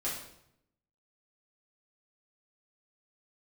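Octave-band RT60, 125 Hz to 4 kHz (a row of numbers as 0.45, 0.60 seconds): 1.0, 0.95, 0.80, 0.70, 0.65, 0.60 seconds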